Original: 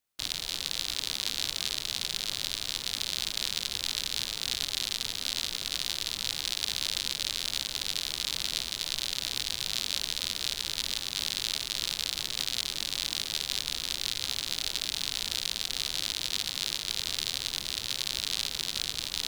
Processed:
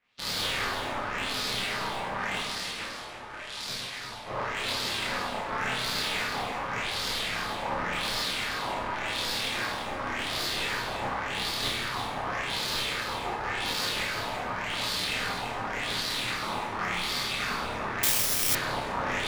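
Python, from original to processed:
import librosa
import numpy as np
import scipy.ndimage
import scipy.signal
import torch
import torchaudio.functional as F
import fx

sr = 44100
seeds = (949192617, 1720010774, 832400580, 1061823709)

y = fx.spec_clip(x, sr, under_db=18)
y = fx.dereverb_blind(y, sr, rt60_s=0.52)
y = fx.peak_eq(y, sr, hz=11000.0, db=11.5, octaves=0.89, at=(2.39, 4.28))
y = fx.over_compress(y, sr, threshold_db=-40.0, ratio=-1.0)
y = fx.filter_lfo_lowpass(y, sr, shape='sine', hz=0.89, low_hz=840.0, high_hz=4600.0, q=2.6)
y = 10.0 ** (-28.5 / 20.0) * np.tanh(y / 10.0 ** (-28.5 / 20.0))
y = fx.chorus_voices(y, sr, voices=2, hz=0.13, base_ms=29, depth_ms=2.6, mix_pct=45)
y = y + 10.0 ** (-8.5 / 20.0) * np.pad(y, (int(338 * sr / 1000.0), 0))[:len(y)]
y = fx.rev_plate(y, sr, seeds[0], rt60_s=0.9, hf_ratio=0.95, predelay_ms=0, drr_db=-5.5)
y = fx.resample_bad(y, sr, factor=8, down='filtered', up='zero_stuff', at=(18.03, 18.55))
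y = F.gain(torch.from_numpy(y), 7.5).numpy()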